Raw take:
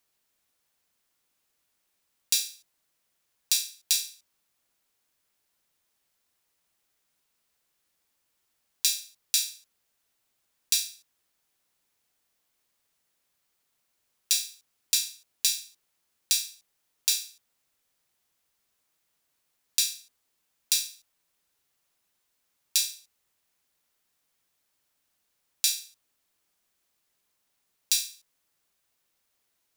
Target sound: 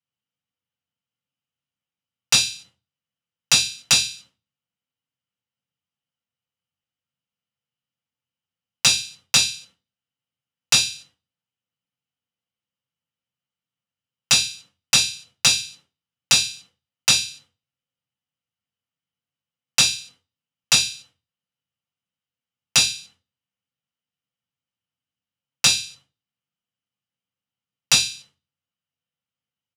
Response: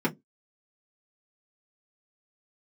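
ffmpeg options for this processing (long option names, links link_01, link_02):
-filter_complex "[0:a]agate=range=-33dB:threshold=-53dB:ratio=3:detection=peak,firequalizer=gain_entry='entry(1100,0);entry(2800,14);entry(14000,-8)':delay=0.05:min_phase=1,asplit=2[link_01][link_02];[link_02]acompressor=threshold=-27dB:ratio=6,volume=3dB[link_03];[link_01][link_03]amix=inputs=2:normalize=0,aeval=exprs='0.794*(abs(mod(val(0)/0.794+3,4)-2)-1)':channel_layout=same[link_04];[1:a]atrim=start_sample=2205,asetrate=24696,aresample=44100[link_05];[link_04][link_05]afir=irnorm=-1:irlink=0,volume=-2.5dB"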